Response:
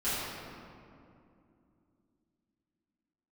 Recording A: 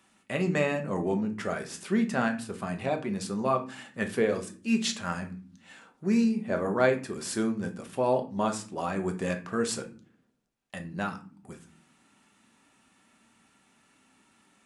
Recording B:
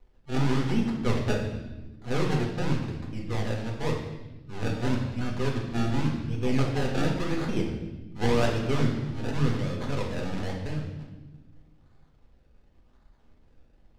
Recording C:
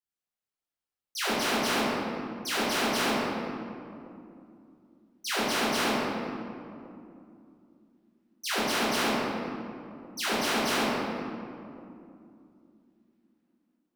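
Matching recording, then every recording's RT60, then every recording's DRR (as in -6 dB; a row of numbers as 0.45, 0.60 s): C; not exponential, 1.2 s, 2.6 s; 5.0, -0.5, -15.0 dB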